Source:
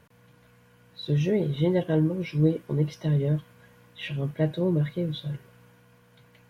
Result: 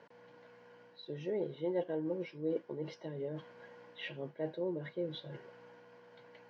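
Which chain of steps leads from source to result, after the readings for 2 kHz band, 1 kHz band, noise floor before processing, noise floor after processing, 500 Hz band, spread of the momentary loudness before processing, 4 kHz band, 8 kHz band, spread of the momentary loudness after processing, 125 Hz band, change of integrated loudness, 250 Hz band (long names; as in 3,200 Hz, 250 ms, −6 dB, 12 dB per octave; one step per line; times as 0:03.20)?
−9.0 dB, −7.5 dB, −58 dBFS, −61 dBFS, −8.0 dB, 10 LU, −10.0 dB, can't be measured, 22 LU, −22.5 dB, −13.0 dB, −14.0 dB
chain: reversed playback
downward compressor 5 to 1, threshold −35 dBFS, peak gain reduction 16.5 dB
reversed playback
loudspeaker in its box 310–4,700 Hz, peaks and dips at 350 Hz +3 dB, 510 Hz +5 dB, 870 Hz +5 dB, 1,200 Hz −6 dB, 2,500 Hz −6 dB, 3,600 Hz −7 dB
level +1.5 dB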